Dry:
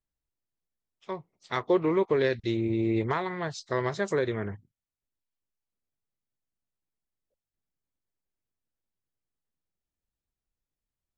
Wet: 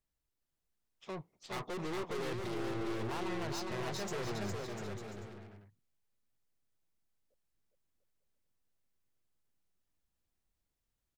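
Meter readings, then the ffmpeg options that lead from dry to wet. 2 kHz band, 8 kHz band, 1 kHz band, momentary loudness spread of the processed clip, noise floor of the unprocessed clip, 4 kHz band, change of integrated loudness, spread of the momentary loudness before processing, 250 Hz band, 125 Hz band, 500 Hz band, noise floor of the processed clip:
-9.0 dB, no reading, -8.0 dB, 10 LU, under -85 dBFS, -3.0 dB, -11.5 dB, 15 LU, -10.5 dB, -8.5 dB, -12.0 dB, under -85 dBFS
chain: -af "aeval=exprs='(tanh(112*val(0)+0.35)-tanh(0.35))/112':c=same,aecho=1:1:410|697|897.9|1039|1137:0.631|0.398|0.251|0.158|0.1,aeval=exprs='0.0224*(abs(mod(val(0)/0.0224+3,4)-2)-1)':c=same,volume=1.33"

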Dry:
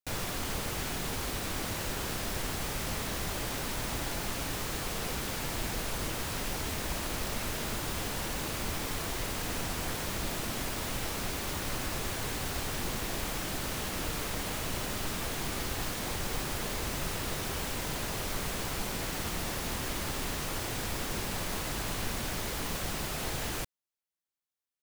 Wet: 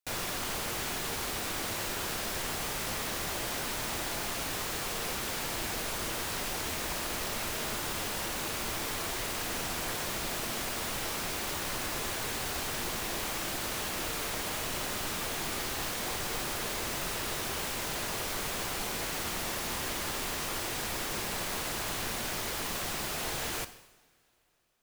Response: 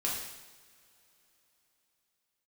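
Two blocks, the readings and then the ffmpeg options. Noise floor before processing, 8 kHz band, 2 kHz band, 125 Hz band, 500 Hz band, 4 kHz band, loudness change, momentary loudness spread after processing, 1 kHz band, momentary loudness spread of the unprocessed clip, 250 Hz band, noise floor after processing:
-41 dBFS, +2.0 dB, +2.0 dB, -5.5 dB, 0.0 dB, +2.0 dB, +1.0 dB, 0 LU, +1.5 dB, 0 LU, -2.5 dB, -40 dBFS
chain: -filter_complex "[0:a]lowshelf=f=250:g=-9,asplit=2[s0][s1];[1:a]atrim=start_sample=2205[s2];[s1][s2]afir=irnorm=-1:irlink=0,volume=0.224[s3];[s0][s3]amix=inputs=2:normalize=0"

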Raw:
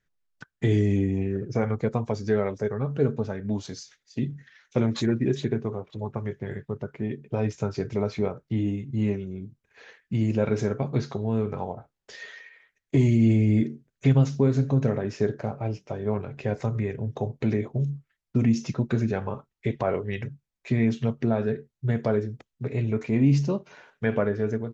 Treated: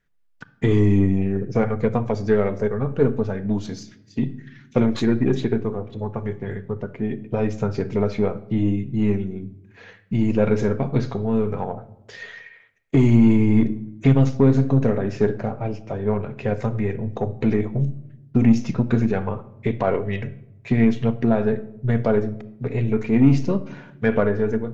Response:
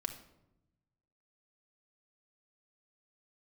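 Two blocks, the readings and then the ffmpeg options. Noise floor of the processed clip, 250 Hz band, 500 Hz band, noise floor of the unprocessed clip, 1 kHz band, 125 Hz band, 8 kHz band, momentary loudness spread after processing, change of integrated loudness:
-52 dBFS, +6.0 dB, +5.0 dB, -82 dBFS, +5.5 dB, +3.0 dB, no reading, 13 LU, +5.0 dB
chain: -filter_complex "[0:a]aeval=exprs='0.376*(cos(1*acos(clip(val(0)/0.376,-1,1)))-cos(1*PI/2))+0.0119*(cos(8*acos(clip(val(0)/0.376,-1,1)))-cos(8*PI/2))':c=same,asplit=2[s0][s1];[1:a]atrim=start_sample=2205,lowpass=4000[s2];[s1][s2]afir=irnorm=-1:irlink=0,volume=0.841[s3];[s0][s3]amix=inputs=2:normalize=0"

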